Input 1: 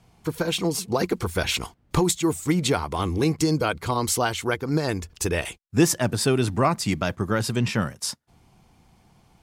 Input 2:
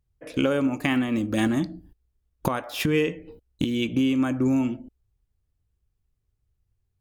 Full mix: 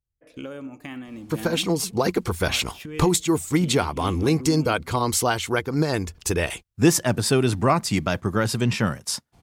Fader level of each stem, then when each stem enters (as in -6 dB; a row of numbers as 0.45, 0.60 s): +1.5, -13.0 dB; 1.05, 0.00 s